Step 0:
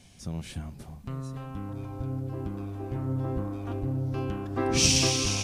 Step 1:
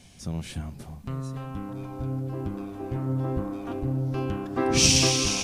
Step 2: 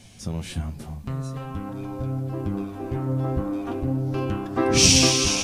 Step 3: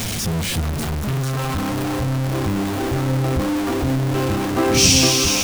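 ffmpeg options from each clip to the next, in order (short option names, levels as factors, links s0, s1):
-af "bandreject=f=50:t=h:w=6,bandreject=f=100:t=h:w=6,volume=1.41"
-af "flanger=delay=9:depth=4.8:regen=52:speed=0.45:shape=sinusoidal,volume=2.37"
-af "aeval=exprs='val(0)+0.5*0.112*sgn(val(0))':c=same"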